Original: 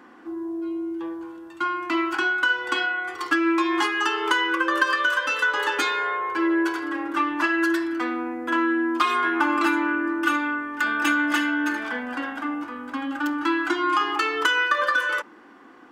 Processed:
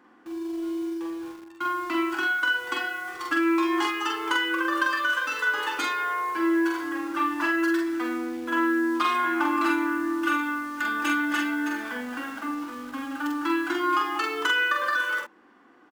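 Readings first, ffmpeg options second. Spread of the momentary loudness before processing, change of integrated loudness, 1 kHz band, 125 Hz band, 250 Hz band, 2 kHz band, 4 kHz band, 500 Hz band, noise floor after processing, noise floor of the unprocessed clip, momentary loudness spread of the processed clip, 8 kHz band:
9 LU, -2.5 dB, -2.5 dB, n/a, -1.5 dB, -3.0 dB, -3.0 dB, -2.5 dB, -56 dBFS, -48 dBFS, 9 LU, -2.0 dB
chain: -filter_complex "[0:a]asplit=2[a][b];[b]acrusher=bits=5:mix=0:aa=0.000001,volume=-5dB[c];[a][c]amix=inputs=2:normalize=0,asplit=2[d][e];[e]adelay=45,volume=-3.5dB[f];[d][f]amix=inputs=2:normalize=0,volume=-9dB"

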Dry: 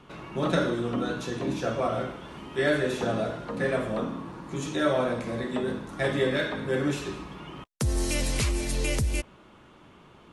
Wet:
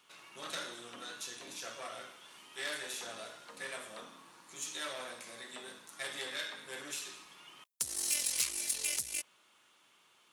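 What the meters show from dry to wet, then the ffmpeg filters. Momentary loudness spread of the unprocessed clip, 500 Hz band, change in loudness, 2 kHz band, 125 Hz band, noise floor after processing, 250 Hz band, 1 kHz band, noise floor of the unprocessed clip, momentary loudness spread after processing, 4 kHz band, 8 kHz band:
11 LU, -21.0 dB, -9.0 dB, -9.5 dB, -33.0 dB, -67 dBFS, -26.0 dB, -14.0 dB, -54 dBFS, 19 LU, -3.5 dB, +2.5 dB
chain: -af "aeval=exprs='(tanh(11.2*val(0)+0.55)-tanh(0.55))/11.2':c=same,aderivative,volume=5dB"

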